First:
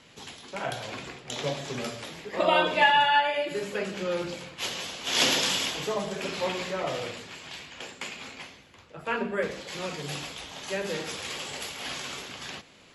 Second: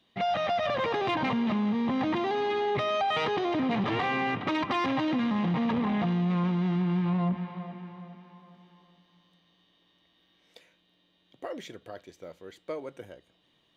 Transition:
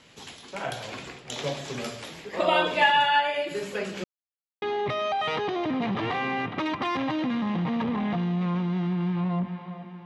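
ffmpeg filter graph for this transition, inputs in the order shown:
-filter_complex "[0:a]apad=whole_dur=10.05,atrim=end=10.05,asplit=2[s0][s1];[s0]atrim=end=4.04,asetpts=PTS-STARTPTS,afade=t=out:st=4.036:d=0.004:c=hsin[s2];[s1]atrim=start=4.04:end=4.62,asetpts=PTS-STARTPTS,volume=0[s3];[1:a]atrim=start=2.51:end=7.94,asetpts=PTS-STARTPTS,afade=t=in:d=0.004:c=hsin[s4];[s2][s3][s4]concat=n=3:v=0:a=1"

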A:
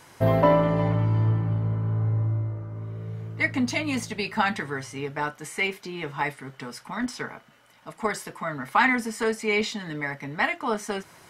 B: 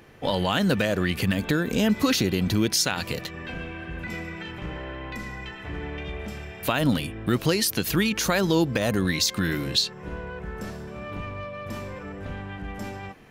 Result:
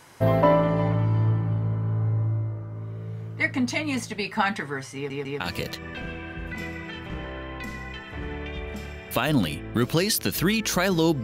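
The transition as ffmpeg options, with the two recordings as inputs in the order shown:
-filter_complex "[0:a]apad=whole_dur=11.23,atrim=end=11.23,asplit=3[s0][s1][s2];[s0]atrim=end=5.102[s3];[s1]atrim=start=4.948:end=5.102[s4];[s2]atrim=start=4.948:end=5.102[s5];[1:a]atrim=start=2.918:end=8.75[s6];[s3][s4]acrossfade=d=0.004:c1=hsin:c2=hsin[s7];[s7][s5]acrossfade=d=0.004:c1=hsin:c2=hsin[s8];[s8][s6]acrossfade=d=0.004:c1=hsin:c2=hsin"

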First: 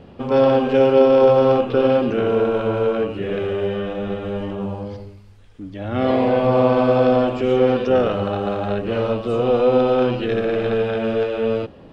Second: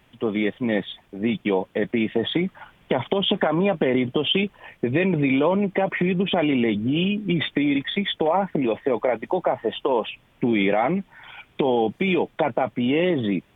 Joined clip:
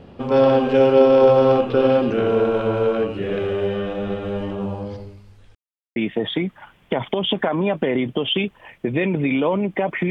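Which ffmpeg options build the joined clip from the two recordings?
-filter_complex "[0:a]apad=whole_dur=10.1,atrim=end=10.1,asplit=2[s0][s1];[s0]atrim=end=5.55,asetpts=PTS-STARTPTS,afade=t=out:st=5.546:d=0.004:c=hsin[s2];[s1]atrim=start=5.55:end=5.96,asetpts=PTS-STARTPTS,volume=0[s3];[1:a]atrim=start=1.95:end=6.09,asetpts=PTS-STARTPTS,afade=t=in:d=0.004:c=hsin[s4];[s2][s3][s4]concat=n=3:v=0:a=1"

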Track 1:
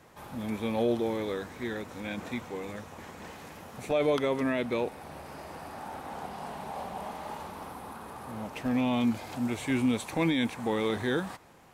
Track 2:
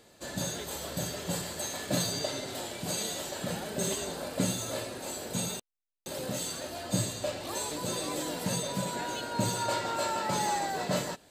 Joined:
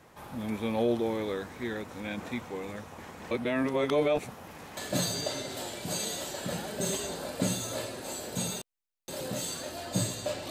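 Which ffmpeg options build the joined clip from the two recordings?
-filter_complex "[0:a]apad=whole_dur=10.5,atrim=end=10.5,asplit=2[s0][s1];[s0]atrim=end=3.312[s2];[s1]atrim=start=3.308:end=4.772,asetpts=PTS-STARTPTS,areverse[s3];[1:a]atrim=start=1.748:end=7.48[s4];[s2][s3]acrossfade=d=0.004:c1=hsin:c2=hsin[s5];[s5][s4]acrossfade=d=0.004:c1=hsin:c2=hsin"

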